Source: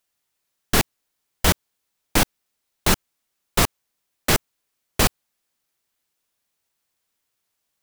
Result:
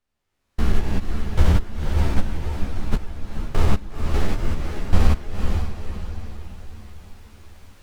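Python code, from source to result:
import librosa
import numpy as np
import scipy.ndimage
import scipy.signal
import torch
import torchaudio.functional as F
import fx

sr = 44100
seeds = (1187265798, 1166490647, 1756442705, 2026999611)

y = fx.spec_steps(x, sr, hold_ms=200)
y = fx.recorder_agc(y, sr, target_db=-20.0, rise_db_per_s=23.0, max_gain_db=30)
y = fx.peak_eq(y, sr, hz=120.0, db=-3.5, octaves=0.95)
y = fx.level_steps(y, sr, step_db=19, at=(2.19, 2.91), fade=0.02)
y = fx.riaa(y, sr, side='playback')
y = fx.echo_diffused(y, sr, ms=483, feedback_pct=48, wet_db=-5.0)
y = fx.ensemble(y, sr)
y = y * 10.0 ** (2.5 / 20.0)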